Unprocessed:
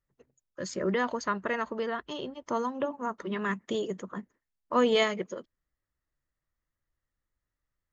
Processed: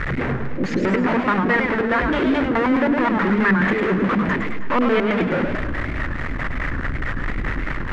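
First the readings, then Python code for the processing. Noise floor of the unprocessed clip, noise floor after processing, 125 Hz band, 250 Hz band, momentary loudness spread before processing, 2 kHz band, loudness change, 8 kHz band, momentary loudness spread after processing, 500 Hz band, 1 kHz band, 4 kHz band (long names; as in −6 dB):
below −85 dBFS, −26 dBFS, +19.5 dB, +16.0 dB, 14 LU, +15.5 dB, +10.5 dB, can't be measured, 8 LU, +8.5 dB, +11.0 dB, +3.0 dB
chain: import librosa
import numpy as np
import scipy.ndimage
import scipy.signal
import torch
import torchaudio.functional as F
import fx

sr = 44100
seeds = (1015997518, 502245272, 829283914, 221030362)

y = x + 0.5 * 10.0 ** (-32.5 / 20.0) * np.sign(x)
y = fx.power_curve(y, sr, exponent=0.35)
y = fx.filter_lfo_lowpass(y, sr, shape='square', hz=4.7, low_hz=300.0, high_hz=1900.0, q=2.2)
y = fx.echo_warbled(y, sr, ms=105, feedback_pct=56, rate_hz=2.8, cents=201, wet_db=-5.5)
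y = y * 10.0 ** (-2.0 / 20.0)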